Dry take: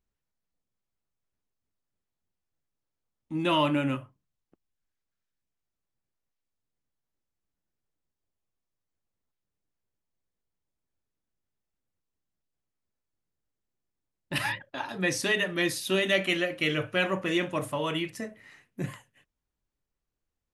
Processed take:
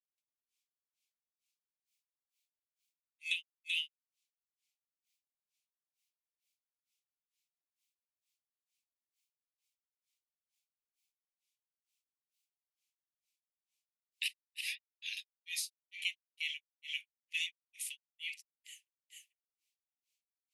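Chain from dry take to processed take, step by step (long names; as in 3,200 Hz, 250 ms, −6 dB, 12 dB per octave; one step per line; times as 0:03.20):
Butterworth high-pass 2,200 Hz 72 dB per octave
downward compressor 4 to 1, threshold −45 dBFS, peak gain reduction 17 dB
granular cloud 250 ms, grains 2.2 per second, spray 311 ms, pitch spread up and down by 0 semitones
level +11.5 dB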